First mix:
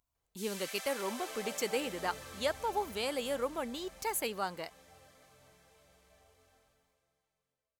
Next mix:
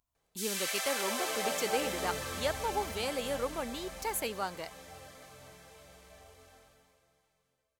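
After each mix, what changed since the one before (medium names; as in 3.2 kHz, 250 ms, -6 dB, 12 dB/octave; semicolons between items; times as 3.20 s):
background +9.5 dB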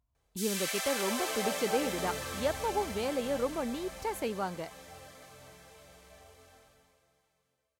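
speech: add tilt EQ -3 dB/octave; master: add high-pass 44 Hz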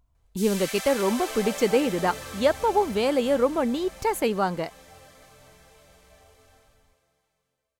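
speech +10.0 dB; master: remove high-pass 44 Hz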